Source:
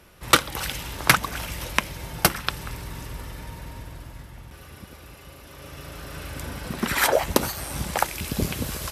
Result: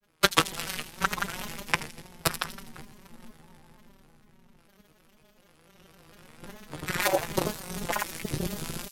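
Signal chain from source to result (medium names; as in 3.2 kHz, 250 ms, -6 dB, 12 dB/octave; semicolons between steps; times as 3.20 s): gate -32 dBFS, range -11 dB; robot voice 183 Hz; frequency shift -13 Hz; granulator, pitch spread up and down by 3 st; AM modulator 230 Hz, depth 65%; on a send: feedback echo behind a high-pass 82 ms, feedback 51%, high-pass 5 kHz, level -8.5 dB; on the sum: trim +2.5 dB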